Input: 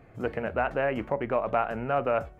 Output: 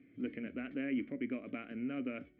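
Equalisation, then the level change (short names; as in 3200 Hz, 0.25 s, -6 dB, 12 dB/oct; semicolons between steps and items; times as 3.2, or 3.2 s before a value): vowel filter i; air absorption 150 m; +5.0 dB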